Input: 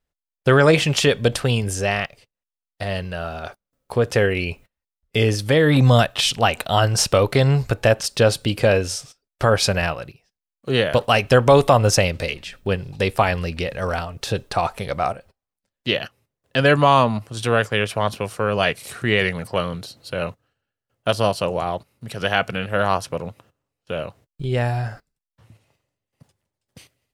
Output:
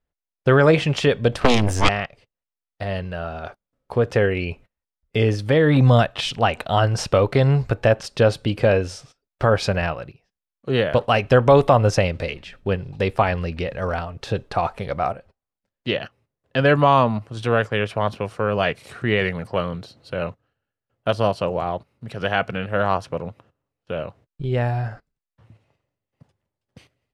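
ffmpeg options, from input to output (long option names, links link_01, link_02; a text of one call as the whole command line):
ffmpeg -i in.wav -filter_complex "[0:a]aemphasis=mode=reproduction:type=75fm,asettb=1/sr,asplit=3[link_01][link_02][link_03];[link_01]atrim=end=1.414[link_04];[link_02]atrim=start=1.41:end=1.89,asetpts=PTS-STARTPTS,afade=type=in:duration=0.004:curve=qsin,afade=type=out:start_time=0.476:duration=0.004:curve=qsin,aeval=exprs='0.501*(cos(1*acos(clip(val(0)/0.501,-1,1)))-cos(1*PI/2))+0.251*(cos(6*acos(clip(val(0)/0.501,-1,1)))-cos(6*PI/2))+0.224*(cos(7*acos(clip(val(0)/0.501,-1,1)))-cos(7*PI/2))':channel_layout=same[link_05];[link_03]atrim=start=1.886[link_06];[link_04][link_05]acrossfade=duration=0.004:curve1=hsin:curve2=qsin[link_07];[link_07][link_06]acrossfade=duration=0.004:curve1=qsin:curve2=hsin,volume=-1dB" out.wav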